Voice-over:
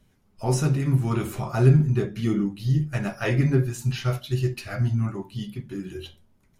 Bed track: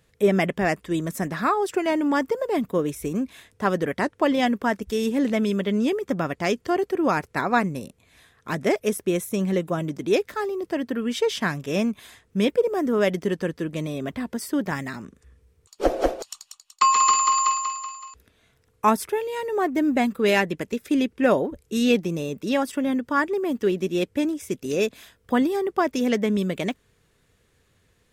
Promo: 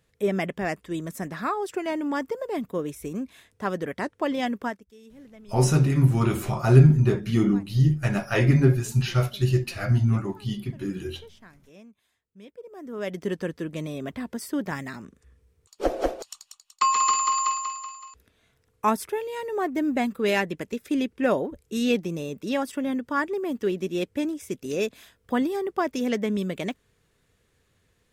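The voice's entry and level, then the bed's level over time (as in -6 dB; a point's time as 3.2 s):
5.10 s, +2.5 dB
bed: 4.67 s -5.5 dB
4.88 s -26 dB
12.48 s -26 dB
13.28 s -3.5 dB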